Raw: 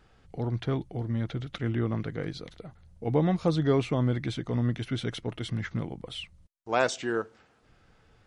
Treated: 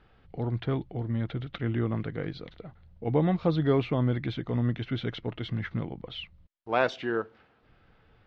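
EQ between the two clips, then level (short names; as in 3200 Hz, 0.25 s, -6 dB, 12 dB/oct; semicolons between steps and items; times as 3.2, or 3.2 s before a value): LPF 3900 Hz 24 dB/oct; 0.0 dB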